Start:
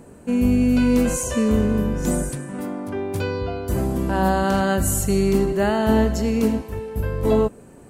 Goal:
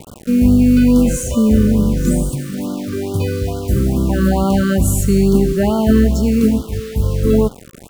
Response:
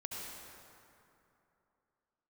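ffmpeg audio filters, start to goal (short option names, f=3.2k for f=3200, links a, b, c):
-filter_complex "[0:a]acrossover=split=290[a][b];[a]acontrast=88[c];[c][b]amix=inputs=2:normalize=0,acrusher=bits=5:mix=0:aa=0.000001,afftfilt=real='re*(1-between(b*sr/1024,750*pow(2100/750,0.5+0.5*sin(2*PI*2.3*pts/sr))/1.41,750*pow(2100/750,0.5+0.5*sin(2*PI*2.3*pts/sr))*1.41))':imag='im*(1-between(b*sr/1024,750*pow(2100/750,0.5+0.5*sin(2*PI*2.3*pts/sr))/1.41,750*pow(2100/750,0.5+0.5*sin(2*PI*2.3*pts/sr))*1.41))':win_size=1024:overlap=0.75,volume=1.5dB"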